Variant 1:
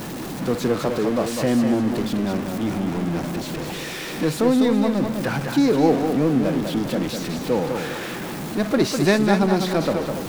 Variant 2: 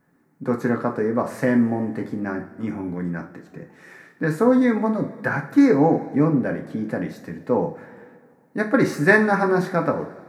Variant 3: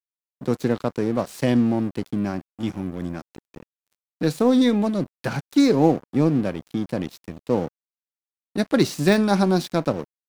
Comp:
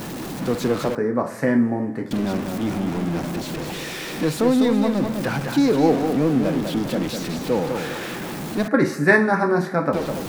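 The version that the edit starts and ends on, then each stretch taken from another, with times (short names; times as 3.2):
1
0.95–2.11 from 2
8.68–9.93 from 2
not used: 3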